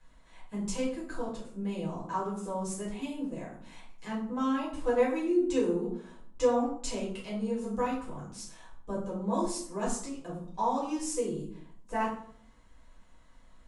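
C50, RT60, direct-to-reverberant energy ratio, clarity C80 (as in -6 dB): 4.5 dB, 0.60 s, -7.0 dB, 8.5 dB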